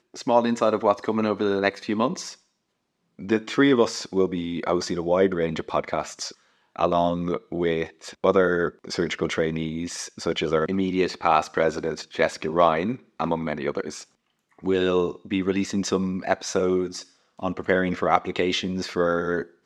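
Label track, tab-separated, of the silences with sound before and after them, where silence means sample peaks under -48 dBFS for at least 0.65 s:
2.370000	3.190000	silence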